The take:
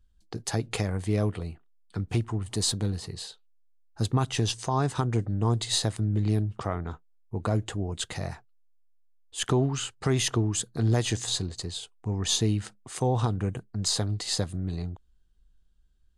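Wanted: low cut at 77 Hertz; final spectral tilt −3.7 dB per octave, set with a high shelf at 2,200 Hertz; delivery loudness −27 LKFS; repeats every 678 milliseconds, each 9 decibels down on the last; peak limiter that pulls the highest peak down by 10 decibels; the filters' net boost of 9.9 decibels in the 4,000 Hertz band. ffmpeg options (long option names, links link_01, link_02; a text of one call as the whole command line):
ffmpeg -i in.wav -af "highpass=77,highshelf=frequency=2200:gain=5,equalizer=frequency=4000:width_type=o:gain=7,alimiter=limit=-14.5dB:level=0:latency=1,aecho=1:1:678|1356|2034|2712:0.355|0.124|0.0435|0.0152,volume=0.5dB" out.wav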